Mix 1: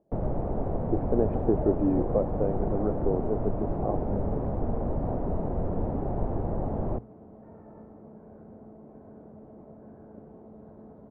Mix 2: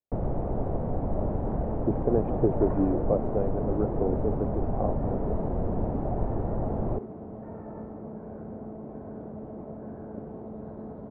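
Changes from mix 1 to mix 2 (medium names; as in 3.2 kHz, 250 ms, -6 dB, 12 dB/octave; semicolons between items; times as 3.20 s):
speech: entry +0.95 s; second sound +8.5 dB; master: remove hum notches 60/120 Hz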